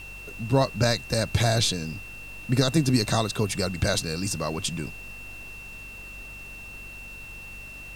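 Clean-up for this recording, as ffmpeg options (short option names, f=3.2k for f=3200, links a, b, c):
-af "bandreject=f=48.2:t=h:w=4,bandreject=f=96.4:t=h:w=4,bandreject=f=144.6:t=h:w=4,bandreject=f=192.8:t=h:w=4,bandreject=f=241:t=h:w=4,bandreject=f=2.7k:w=30,afftdn=nr=30:nf=-41"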